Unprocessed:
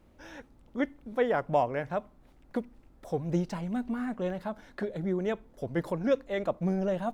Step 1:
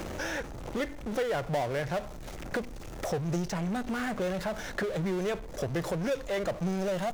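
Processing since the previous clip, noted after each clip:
graphic EQ with 15 bands 250 Hz −11 dB, 1,000 Hz −5 dB, 6,300 Hz +8 dB
power curve on the samples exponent 0.5
multiband upward and downward compressor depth 70%
level −5 dB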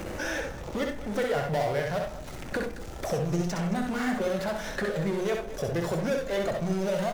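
spectral magnitudes quantised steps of 15 dB
multi-tap delay 64/92/220 ms −4.5/−12.5/−15.5 dB
convolution reverb RT60 0.45 s, pre-delay 7 ms, DRR 10.5 dB
level +1 dB

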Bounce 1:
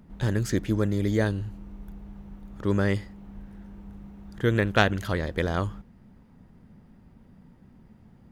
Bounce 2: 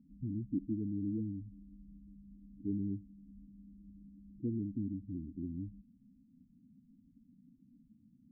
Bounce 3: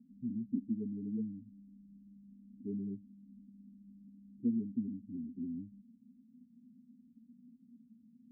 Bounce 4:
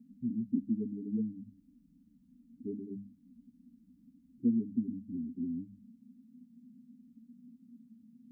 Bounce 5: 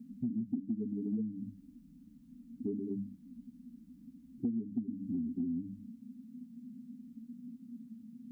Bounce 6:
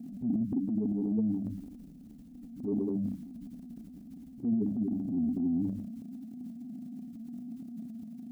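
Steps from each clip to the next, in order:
formant resonators in series i; spectral peaks only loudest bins 8; level −3 dB
pair of resonant band-passes 320 Hz, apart 0.82 octaves; level +7.5 dB
mains-hum notches 50/100/150/200 Hz; level +4 dB
hum removal 95.01 Hz, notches 3; downward compressor, threshold −40 dBFS, peak gain reduction 15.5 dB; level +7.5 dB
transient designer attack −8 dB, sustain +9 dB; level +6 dB

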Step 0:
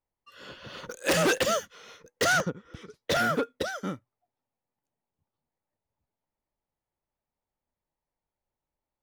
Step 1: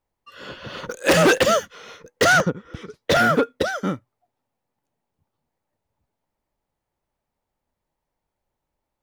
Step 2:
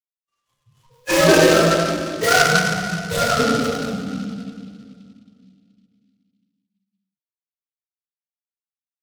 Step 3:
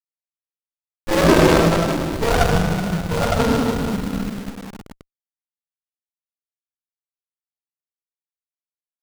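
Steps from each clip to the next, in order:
high-shelf EQ 3,700 Hz −5.5 dB; level +9 dB
spectral dynamics exaggerated over time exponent 3; convolution reverb RT60 2.3 s, pre-delay 3 ms, DRR −14.5 dB; short delay modulated by noise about 3,400 Hz, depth 0.059 ms; level −12.5 dB
in parallel at −8 dB: comparator with hysteresis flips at −22.5 dBFS; on the sum: bit-depth reduction 6 bits, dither none; windowed peak hold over 33 samples; level +1 dB

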